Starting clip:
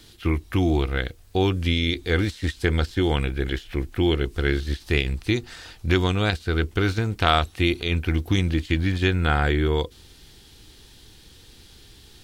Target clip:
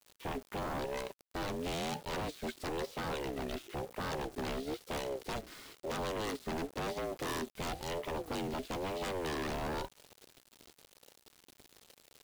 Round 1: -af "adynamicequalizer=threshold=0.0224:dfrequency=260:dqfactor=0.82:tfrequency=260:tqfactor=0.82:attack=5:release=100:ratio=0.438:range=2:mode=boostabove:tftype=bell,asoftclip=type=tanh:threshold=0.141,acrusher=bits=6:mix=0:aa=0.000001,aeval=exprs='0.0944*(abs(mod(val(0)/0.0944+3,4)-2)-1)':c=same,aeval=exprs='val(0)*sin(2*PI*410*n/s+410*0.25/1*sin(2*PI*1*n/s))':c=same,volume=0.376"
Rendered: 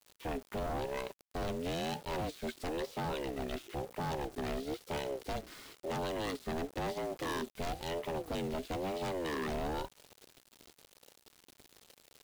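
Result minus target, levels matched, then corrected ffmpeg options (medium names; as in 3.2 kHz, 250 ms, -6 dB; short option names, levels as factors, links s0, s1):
saturation: distortion +11 dB
-af "adynamicequalizer=threshold=0.0224:dfrequency=260:dqfactor=0.82:tfrequency=260:tqfactor=0.82:attack=5:release=100:ratio=0.438:range=2:mode=boostabove:tftype=bell,asoftclip=type=tanh:threshold=0.398,acrusher=bits=6:mix=0:aa=0.000001,aeval=exprs='0.0944*(abs(mod(val(0)/0.0944+3,4)-2)-1)':c=same,aeval=exprs='val(0)*sin(2*PI*410*n/s+410*0.25/1*sin(2*PI*1*n/s))':c=same,volume=0.376"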